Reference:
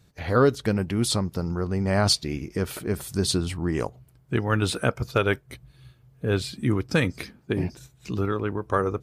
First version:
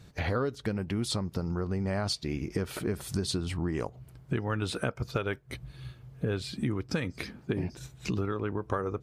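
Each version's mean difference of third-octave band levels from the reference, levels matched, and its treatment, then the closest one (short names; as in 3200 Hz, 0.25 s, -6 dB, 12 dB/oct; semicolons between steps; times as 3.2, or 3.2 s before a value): 3.5 dB: high shelf 9200 Hz -9 dB; compressor 6:1, threshold -35 dBFS, peak gain reduction 19 dB; gain +6.5 dB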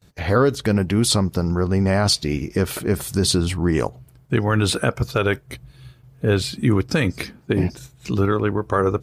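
1.5 dB: limiter -15 dBFS, peak gain reduction 6 dB; gate with hold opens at -49 dBFS; gain +7 dB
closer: second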